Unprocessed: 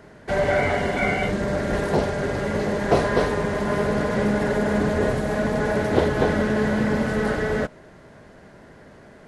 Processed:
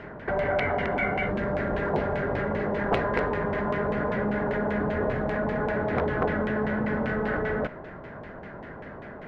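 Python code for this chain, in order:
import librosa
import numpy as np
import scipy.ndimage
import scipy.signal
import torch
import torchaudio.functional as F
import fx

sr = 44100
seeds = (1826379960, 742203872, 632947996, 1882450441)

p1 = fx.over_compress(x, sr, threshold_db=-30.0, ratio=-0.5)
p2 = x + F.gain(torch.from_numpy(p1), -0.5).numpy()
p3 = (np.mod(10.0 ** (8.5 / 20.0) * p2 + 1.0, 2.0) - 1.0) / 10.0 ** (8.5 / 20.0)
p4 = fx.filter_lfo_lowpass(p3, sr, shape='saw_down', hz=5.1, low_hz=870.0, high_hz=2800.0, q=1.7)
y = F.gain(torch.from_numpy(p4), -7.5).numpy()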